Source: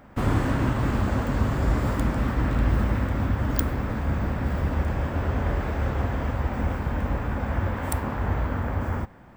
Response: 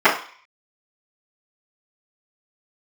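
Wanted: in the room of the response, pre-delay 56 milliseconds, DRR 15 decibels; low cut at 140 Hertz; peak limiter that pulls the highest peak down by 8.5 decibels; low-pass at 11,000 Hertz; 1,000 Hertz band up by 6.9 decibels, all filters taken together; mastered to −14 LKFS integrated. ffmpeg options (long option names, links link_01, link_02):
-filter_complex "[0:a]highpass=140,lowpass=11000,equalizer=frequency=1000:width_type=o:gain=8.5,alimiter=limit=-20.5dB:level=0:latency=1,asplit=2[link_01][link_02];[1:a]atrim=start_sample=2205,adelay=56[link_03];[link_02][link_03]afir=irnorm=-1:irlink=0,volume=-41dB[link_04];[link_01][link_04]amix=inputs=2:normalize=0,volume=15.5dB"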